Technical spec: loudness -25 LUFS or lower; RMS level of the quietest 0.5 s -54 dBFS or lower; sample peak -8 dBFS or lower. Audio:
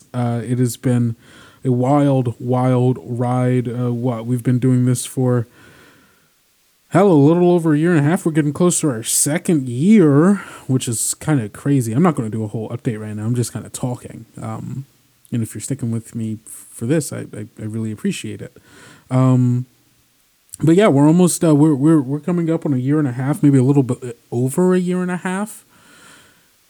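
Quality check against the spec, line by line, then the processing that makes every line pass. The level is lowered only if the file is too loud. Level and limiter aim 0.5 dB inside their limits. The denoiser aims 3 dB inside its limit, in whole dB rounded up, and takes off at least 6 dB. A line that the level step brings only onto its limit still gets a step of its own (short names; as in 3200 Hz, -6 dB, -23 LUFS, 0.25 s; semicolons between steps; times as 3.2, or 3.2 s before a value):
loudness -17.0 LUFS: fail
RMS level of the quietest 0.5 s -59 dBFS: OK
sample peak -3.5 dBFS: fail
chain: gain -8.5 dB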